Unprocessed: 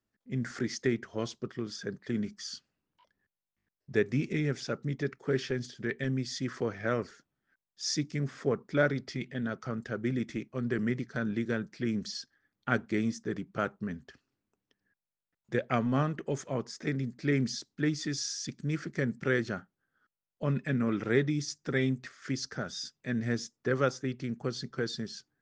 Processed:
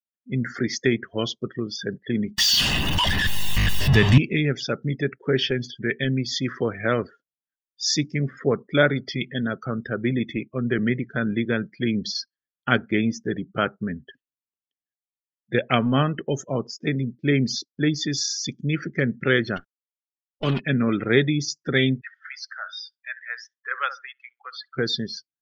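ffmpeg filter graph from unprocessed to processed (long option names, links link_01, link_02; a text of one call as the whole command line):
ffmpeg -i in.wav -filter_complex "[0:a]asettb=1/sr,asplit=3[link_01][link_02][link_03];[link_01]atrim=end=2.384[link_04];[link_02]atrim=start=2.38:end=4.18,asetpts=PTS-STARTPTS,afade=type=in:duration=0.004:curve=qsin,afade=type=out:start_time=1.796:duration=0.004:curve=qsin,aeval=exprs='val(0)+0.5*0.0447*sgn(val(0))':channel_layout=same,aecho=1:1:1.1:0.34,atrim=end_sample=79380,asubboost=boost=7:cutoff=160[link_05];[link_03]atrim=start=4.176[link_06];[link_04][link_05]acrossfade=duration=0.004:curve1=hsin:curve2=qsin[link_07];[link_07][link_06]acrossfade=duration=0.004:curve1=qsin:curve2=hsin,asettb=1/sr,asplit=3[link_08][link_09][link_10];[link_08]atrim=end=16.204[link_11];[link_09]atrim=start=16.2:end=18.15,asetpts=PTS-STARTPTS,afade=type=in:duration=0.004:curve=qsin,afade=type=out:start_time=1.946:duration=0.004:curve=qsin,equalizer=frequency=1900:width=0.95:gain=-3,agate=range=-7dB:threshold=-51dB:ratio=16:release=100:detection=peak[link_12];[link_10]atrim=start=18.146[link_13];[link_11][link_12]acrossfade=duration=0.004:curve1=hsin:curve2=qsin[link_14];[link_14][link_13]acrossfade=duration=0.004:curve1=qsin:curve2=hsin,asettb=1/sr,asplit=3[link_15][link_16][link_17];[link_15]atrim=end=19.564[link_18];[link_16]atrim=start=19.56:end=20.6,asetpts=PTS-STARTPTS,afade=type=in:duration=0.004:curve=qsin,afade=type=out:start_time=1.036:duration=0.004:curve=qsin,aecho=1:1:2.7:0.38,atrim=end_sample=45864,acrusher=bits=7:dc=4:mix=0:aa=0.000001[link_19];[link_17]atrim=start=20.596[link_20];[link_18][link_19]acrossfade=duration=0.004:curve1=hsin:curve2=qsin[link_21];[link_21][link_20]acrossfade=duration=0.004:curve1=qsin:curve2=hsin,asettb=1/sr,asplit=3[link_22][link_23][link_24];[link_22]atrim=end=22.014[link_25];[link_23]atrim=start=22.01:end=24.75,asetpts=PTS-STARTPTS,afade=type=in:duration=0.004:curve=qsin,afade=type=out:start_time=2.736:duration=0.004:curve=qsin,highpass=frequency=930:width=0.5412,highpass=frequency=930:width=1.3066,aemphasis=mode=reproduction:type=75fm,asplit=2[link_26][link_27];[link_27]adelay=66,lowpass=frequency=2000:poles=1,volume=-10dB,asplit=2[link_28][link_29];[link_29]adelay=66,lowpass=frequency=2000:poles=1,volume=0.3,asplit=2[link_30][link_31];[link_31]adelay=66,lowpass=frequency=2000:poles=1,volume=0.3[link_32];[link_26][link_28][link_30][link_32]amix=inputs=4:normalize=0,atrim=end_sample=120834[link_33];[link_24]atrim=start=24.746[link_34];[link_25][link_33]acrossfade=duration=0.004:curve1=hsin:curve2=qsin[link_35];[link_35][link_34]acrossfade=duration=0.004:curve1=qsin:curve2=hsin,afftdn=noise_reduction=35:noise_floor=-45,equalizer=frequency=3100:width=2.3:gain=14.5,volume=7.5dB" out.wav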